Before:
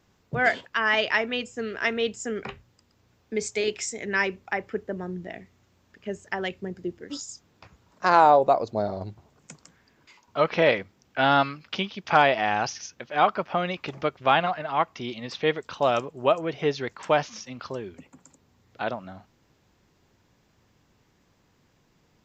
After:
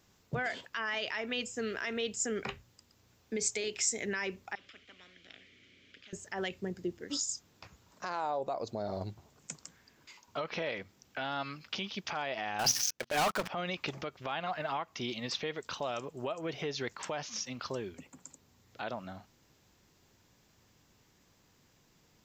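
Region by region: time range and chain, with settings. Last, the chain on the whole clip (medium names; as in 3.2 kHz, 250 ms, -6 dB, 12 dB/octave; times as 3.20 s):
4.55–6.13 s: vowel filter i + treble shelf 5.8 kHz -9 dB + spectrum-flattening compressor 10:1
12.59–13.48 s: hum notches 60/120/180/240 Hz + level held to a coarse grid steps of 12 dB + waveshaping leveller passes 5
whole clip: compression 6:1, threshold -25 dBFS; peak limiter -22.5 dBFS; treble shelf 4 kHz +10 dB; trim -3.5 dB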